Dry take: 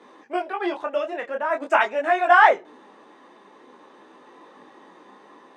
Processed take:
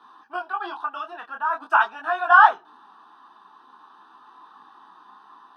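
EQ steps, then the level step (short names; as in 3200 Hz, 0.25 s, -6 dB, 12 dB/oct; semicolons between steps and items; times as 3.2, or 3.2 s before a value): band shelf 970 Hz +11.5 dB; high shelf 2400 Hz +11 dB; fixed phaser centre 2100 Hz, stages 6; -9.0 dB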